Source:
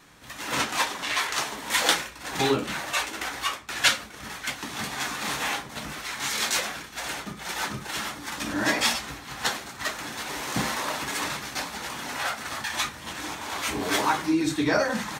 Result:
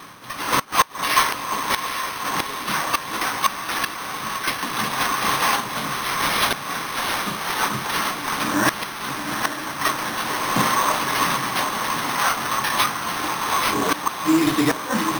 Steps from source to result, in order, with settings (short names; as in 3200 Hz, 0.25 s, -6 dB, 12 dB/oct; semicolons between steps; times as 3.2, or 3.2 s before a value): one-sided fold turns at -18 dBFS; HPF 99 Hz 24 dB/oct; flipped gate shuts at -14 dBFS, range -26 dB; bell 1100 Hz +11 dB 0.29 oct; diffused feedback echo 0.81 s, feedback 61%, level -7.5 dB; careless resampling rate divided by 6×, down none, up hold; reverse; upward compressor, threshold -36 dBFS; reverse; gain +6 dB